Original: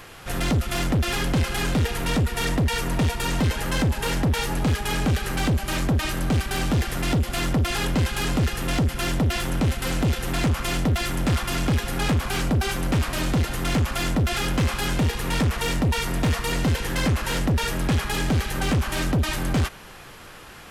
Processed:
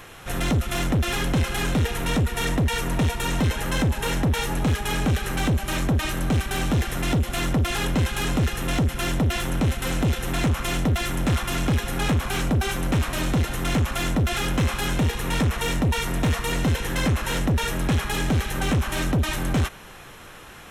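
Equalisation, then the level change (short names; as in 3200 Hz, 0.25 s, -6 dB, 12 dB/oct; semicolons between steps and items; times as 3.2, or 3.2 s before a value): notch 4700 Hz, Q 6.8; 0.0 dB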